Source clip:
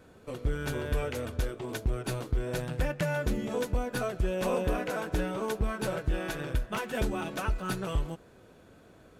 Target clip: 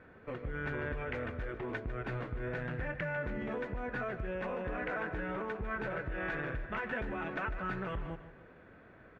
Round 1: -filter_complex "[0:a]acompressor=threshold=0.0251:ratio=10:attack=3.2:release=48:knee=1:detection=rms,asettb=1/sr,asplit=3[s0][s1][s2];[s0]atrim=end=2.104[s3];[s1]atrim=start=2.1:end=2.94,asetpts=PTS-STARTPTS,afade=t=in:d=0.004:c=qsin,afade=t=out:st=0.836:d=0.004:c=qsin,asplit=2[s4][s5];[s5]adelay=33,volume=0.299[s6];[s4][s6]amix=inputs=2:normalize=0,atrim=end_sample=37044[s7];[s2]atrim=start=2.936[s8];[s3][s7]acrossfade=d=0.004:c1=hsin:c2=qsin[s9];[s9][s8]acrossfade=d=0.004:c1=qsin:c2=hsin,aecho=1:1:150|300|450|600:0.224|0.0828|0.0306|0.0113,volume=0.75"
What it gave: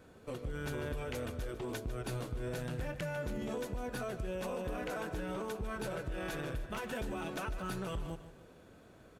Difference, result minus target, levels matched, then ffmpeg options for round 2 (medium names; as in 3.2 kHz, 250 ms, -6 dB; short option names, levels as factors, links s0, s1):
2 kHz band -5.0 dB
-filter_complex "[0:a]acompressor=threshold=0.0251:ratio=10:attack=3.2:release=48:knee=1:detection=rms,lowpass=f=1900:t=q:w=2.8,asettb=1/sr,asplit=3[s0][s1][s2];[s0]atrim=end=2.104[s3];[s1]atrim=start=2.1:end=2.94,asetpts=PTS-STARTPTS,afade=t=in:d=0.004:c=qsin,afade=t=out:st=0.836:d=0.004:c=qsin,asplit=2[s4][s5];[s5]adelay=33,volume=0.299[s6];[s4][s6]amix=inputs=2:normalize=0,atrim=end_sample=37044[s7];[s2]atrim=start=2.936[s8];[s3][s7]acrossfade=d=0.004:c1=hsin:c2=qsin[s9];[s9][s8]acrossfade=d=0.004:c1=qsin:c2=hsin,aecho=1:1:150|300|450|600:0.224|0.0828|0.0306|0.0113,volume=0.75"